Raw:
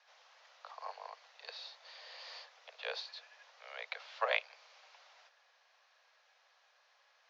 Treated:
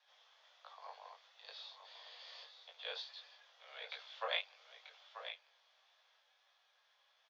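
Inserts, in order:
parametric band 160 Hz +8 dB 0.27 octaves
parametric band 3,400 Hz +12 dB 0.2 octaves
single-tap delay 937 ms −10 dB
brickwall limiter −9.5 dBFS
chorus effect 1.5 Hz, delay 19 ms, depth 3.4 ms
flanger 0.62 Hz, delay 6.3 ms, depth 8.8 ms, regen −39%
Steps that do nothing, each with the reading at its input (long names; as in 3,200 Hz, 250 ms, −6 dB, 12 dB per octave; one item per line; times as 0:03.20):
parametric band 160 Hz: nothing at its input below 380 Hz
brickwall limiter −9.5 dBFS: peak of its input −12.0 dBFS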